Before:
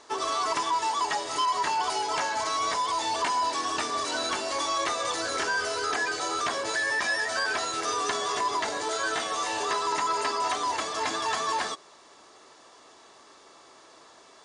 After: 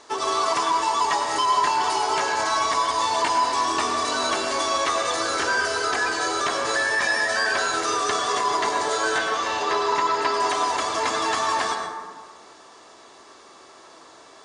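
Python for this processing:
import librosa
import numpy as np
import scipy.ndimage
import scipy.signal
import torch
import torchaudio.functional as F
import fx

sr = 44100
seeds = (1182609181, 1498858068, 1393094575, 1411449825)

y = fx.lowpass(x, sr, hz=5200.0, slope=12, at=(9.18, 10.34))
y = fx.rev_plate(y, sr, seeds[0], rt60_s=1.6, hf_ratio=0.35, predelay_ms=85, drr_db=3.0)
y = F.gain(torch.from_numpy(y), 3.5).numpy()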